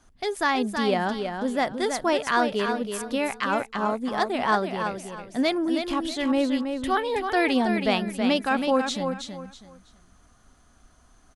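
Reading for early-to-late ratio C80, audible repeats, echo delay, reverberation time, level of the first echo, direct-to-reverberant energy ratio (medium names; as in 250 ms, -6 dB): no reverb, 3, 324 ms, no reverb, -6.5 dB, no reverb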